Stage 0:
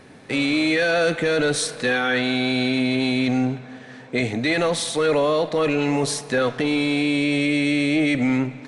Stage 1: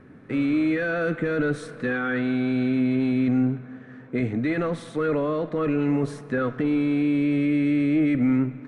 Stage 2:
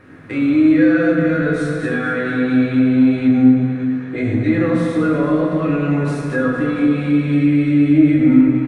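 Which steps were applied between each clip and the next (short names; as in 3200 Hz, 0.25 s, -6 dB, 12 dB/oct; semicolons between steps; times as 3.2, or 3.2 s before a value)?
EQ curve 300 Hz 0 dB, 840 Hz -12 dB, 1300 Hz -2 dB, 4400 Hz -22 dB
feedback echo 0.228 s, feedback 55%, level -9.5 dB; reverb RT60 1.9 s, pre-delay 5 ms, DRR -5 dB; mismatched tape noise reduction encoder only; gain -1 dB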